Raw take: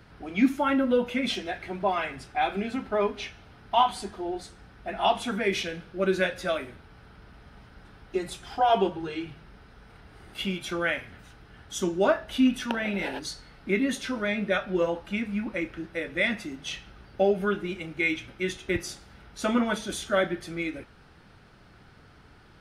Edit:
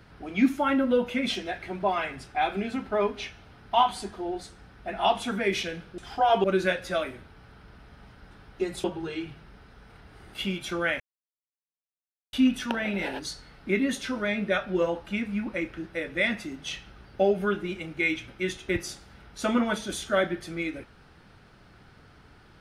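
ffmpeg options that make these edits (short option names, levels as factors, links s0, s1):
-filter_complex "[0:a]asplit=6[s0][s1][s2][s3][s4][s5];[s0]atrim=end=5.982[s6];[s1]atrim=start=8.378:end=8.842[s7];[s2]atrim=start=5.978:end=8.382[s8];[s3]atrim=start=8.838:end=11,asetpts=PTS-STARTPTS,afade=t=out:st=2.158:d=0.004:c=hsin[s9];[s4]atrim=start=11:end=12.33,asetpts=PTS-STARTPTS,volume=0[s10];[s5]atrim=start=12.33,asetpts=PTS-STARTPTS,afade=t=in:d=0.004:c=hsin[s11];[s6][s7]acrossfade=d=0.004:c1=hsin:c2=hsin[s12];[s12][s8]acrossfade=d=0.004:c1=hsin:c2=hsin[s13];[s9][s10][s11]concat=n=3:v=0:a=1[s14];[s13][s14]acrossfade=d=0.004:c1=hsin:c2=hsin"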